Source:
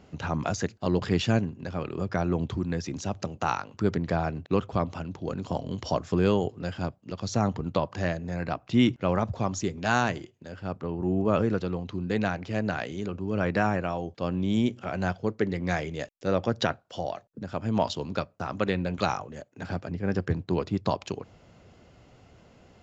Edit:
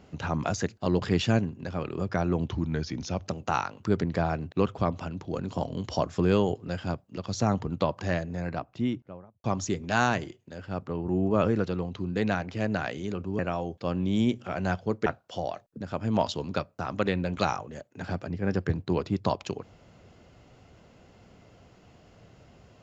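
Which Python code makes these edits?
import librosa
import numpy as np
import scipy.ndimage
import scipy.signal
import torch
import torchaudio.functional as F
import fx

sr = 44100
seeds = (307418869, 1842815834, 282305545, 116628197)

y = fx.studio_fade_out(x, sr, start_s=8.14, length_s=1.24)
y = fx.edit(y, sr, fx.speed_span(start_s=2.49, length_s=0.69, speed=0.92),
    fx.cut(start_s=13.33, length_s=0.43),
    fx.cut(start_s=15.43, length_s=1.24), tone=tone)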